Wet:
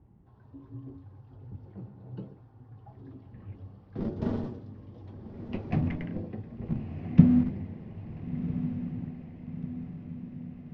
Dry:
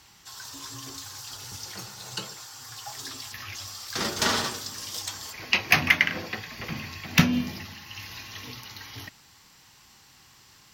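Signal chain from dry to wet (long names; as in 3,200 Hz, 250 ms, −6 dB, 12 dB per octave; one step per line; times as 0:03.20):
low-pass that shuts in the quiet parts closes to 1,600 Hz, open at −21 dBFS
drawn EQ curve 230 Hz 0 dB, 630 Hz −11 dB, 1,300 Hz −26 dB
in parallel at −7.5 dB: comparator with hysteresis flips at −29.5 dBFS
on the sum: low-pass filter 3,700 Hz 12 dB per octave
feedback delay with all-pass diffusion 1,407 ms, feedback 57%, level −10 dB
reversed playback
upward compression, threshold −56 dBFS
reversed playback
high-shelf EQ 2,400 Hz −11.5 dB
level +4 dB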